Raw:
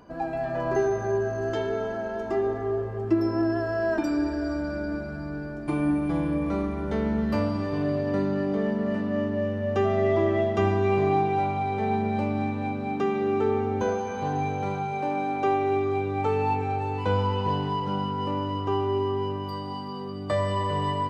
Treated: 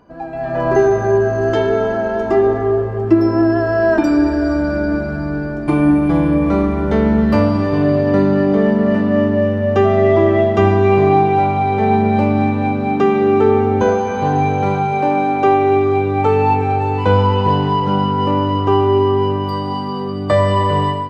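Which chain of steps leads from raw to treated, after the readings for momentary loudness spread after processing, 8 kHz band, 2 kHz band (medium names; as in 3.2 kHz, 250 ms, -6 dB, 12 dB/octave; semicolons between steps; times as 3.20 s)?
6 LU, no reading, +11.0 dB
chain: treble shelf 4.3 kHz -6.5 dB; level rider gain up to 12 dB; trim +1 dB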